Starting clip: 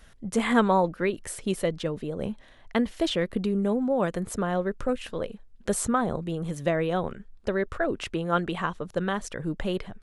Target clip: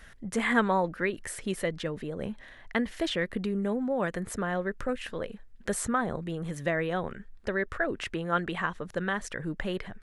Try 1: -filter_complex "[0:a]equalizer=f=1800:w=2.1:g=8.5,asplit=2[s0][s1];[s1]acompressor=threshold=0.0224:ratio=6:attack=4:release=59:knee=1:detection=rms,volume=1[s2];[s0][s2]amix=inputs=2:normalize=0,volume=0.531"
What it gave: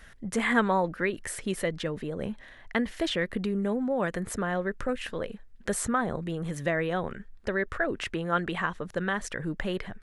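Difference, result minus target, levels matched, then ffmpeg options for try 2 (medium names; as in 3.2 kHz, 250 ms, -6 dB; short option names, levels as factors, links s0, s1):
compression: peak gain reduction -6.5 dB
-filter_complex "[0:a]equalizer=f=1800:w=2.1:g=8.5,asplit=2[s0][s1];[s1]acompressor=threshold=0.00944:ratio=6:attack=4:release=59:knee=1:detection=rms,volume=1[s2];[s0][s2]amix=inputs=2:normalize=0,volume=0.531"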